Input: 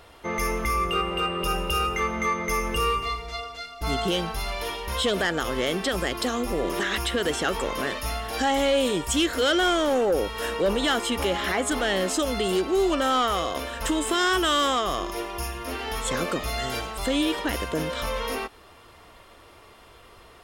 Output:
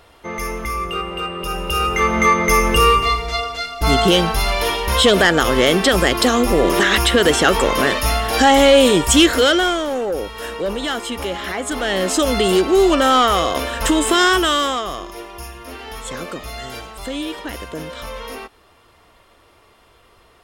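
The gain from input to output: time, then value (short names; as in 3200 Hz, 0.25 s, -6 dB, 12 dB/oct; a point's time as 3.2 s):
1.48 s +1 dB
2.18 s +11.5 dB
9.29 s +11.5 dB
9.86 s +0.5 dB
11.59 s +0.5 dB
12.29 s +9 dB
14.22 s +9 dB
15.08 s -2 dB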